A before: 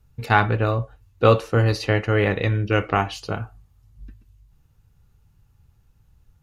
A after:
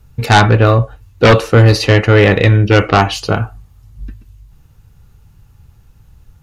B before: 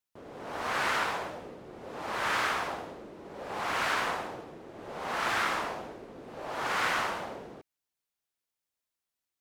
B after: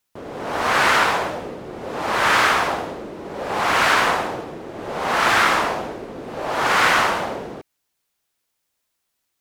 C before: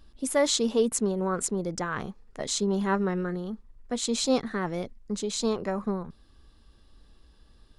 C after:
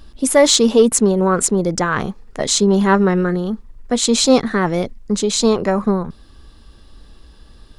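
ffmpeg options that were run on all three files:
-af "aeval=exprs='0.794*sin(PI/2*2.82*val(0)/0.794)':c=same"

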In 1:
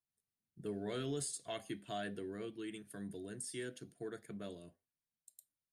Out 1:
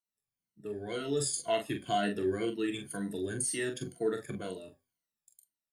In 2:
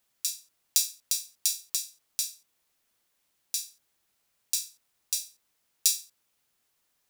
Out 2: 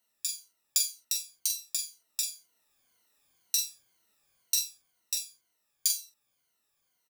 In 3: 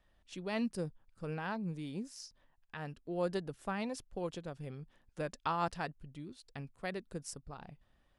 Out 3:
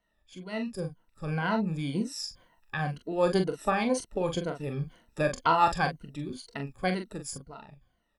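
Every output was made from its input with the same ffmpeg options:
-filter_complex "[0:a]afftfilt=real='re*pow(10,15/40*sin(2*PI*(1.9*log(max(b,1)*sr/1024/100)/log(2)-(-2)*(pts-256)/sr)))':imag='im*pow(10,15/40*sin(2*PI*(1.9*log(max(b,1)*sr/1024/100)/log(2)-(-2)*(pts-256)/sr)))':win_size=1024:overlap=0.75,dynaudnorm=f=180:g=13:m=13dB,asplit=2[a][b];[b]aecho=0:1:27|43:0.211|0.447[c];[a][c]amix=inputs=2:normalize=0,volume=-5dB"

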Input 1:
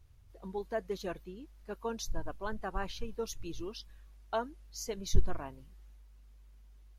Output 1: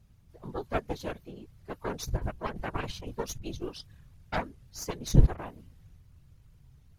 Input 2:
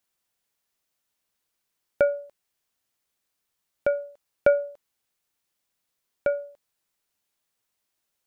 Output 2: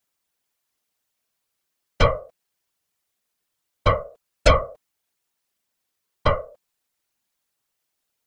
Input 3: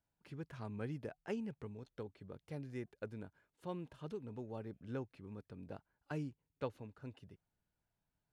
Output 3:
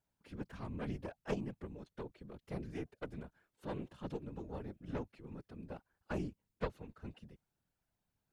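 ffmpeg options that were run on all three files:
-af "aeval=exprs='0.447*(cos(1*acos(clip(val(0)/0.447,-1,1)))-cos(1*PI/2))+0.02*(cos(5*acos(clip(val(0)/0.447,-1,1)))-cos(5*PI/2))+0.0355*(cos(6*acos(clip(val(0)/0.447,-1,1)))-cos(6*PI/2))+0.2*(cos(8*acos(clip(val(0)/0.447,-1,1)))-cos(8*PI/2))':c=same,afftfilt=real='hypot(re,im)*cos(2*PI*random(0))':imag='hypot(re,im)*sin(2*PI*random(1))':win_size=512:overlap=0.75,volume=5.5dB"

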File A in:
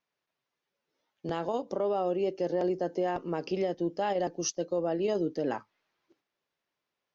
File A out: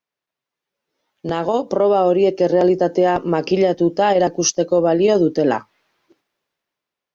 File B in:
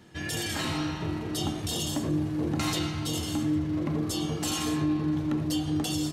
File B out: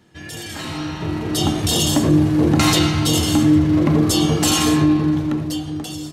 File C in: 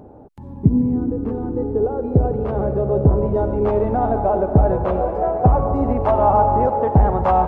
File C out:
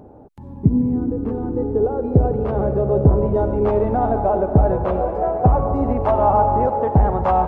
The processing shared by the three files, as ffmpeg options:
-af "dynaudnorm=f=220:g=11:m=16dB,volume=-1dB"

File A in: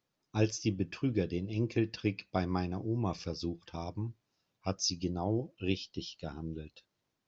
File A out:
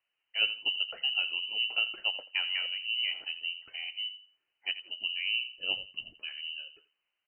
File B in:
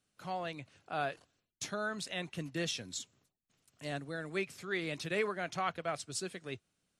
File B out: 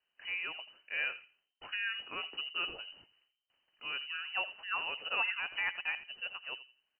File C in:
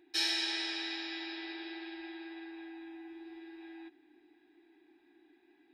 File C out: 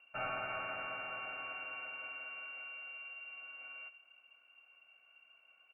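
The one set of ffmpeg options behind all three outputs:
-filter_complex "[0:a]asplit=2[a][b];[b]adelay=84,lowpass=f=870:p=1,volume=-10.5dB,asplit=2[c][d];[d]adelay=84,lowpass=f=870:p=1,volume=0.28,asplit=2[e][f];[f]adelay=84,lowpass=f=870:p=1,volume=0.28[g];[a][c][e][g]amix=inputs=4:normalize=0,lowpass=f=2.6k:t=q:w=0.5098,lowpass=f=2.6k:t=q:w=0.6013,lowpass=f=2.6k:t=q:w=0.9,lowpass=f=2.6k:t=q:w=2.563,afreqshift=-3100"

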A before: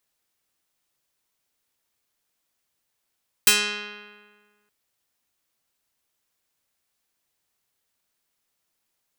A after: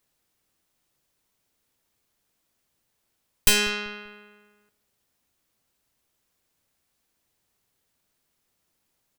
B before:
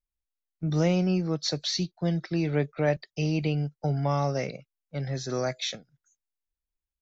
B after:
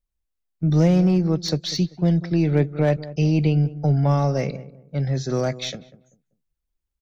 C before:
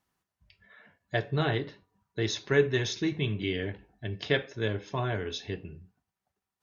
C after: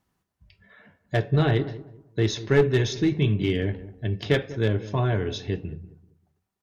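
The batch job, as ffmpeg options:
-filter_complex "[0:a]aeval=exprs='0.668*(cos(1*acos(clip(val(0)/0.668,-1,1)))-cos(1*PI/2))+0.0168*(cos(6*acos(clip(val(0)/0.668,-1,1)))-cos(6*PI/2))':c=same,aeval=exprs='clip(val(0),-1,0.0841)':c=same,lowshelf=f=490:g=8,asplit=2[a][b];[b]adelay=194,lowpass=f=860:p=1,volume=-15dB,asplit=2[c][d];[d]adelay=194,lowpass=f=860:p=1,volume=0.3,asplit=2[e][f];[f]adelay=194,lowpass=f=860:p=1,volume=0.3[g];[a][c][e][g]amix=inputs=4:normalize=0,volume=1.5dB"

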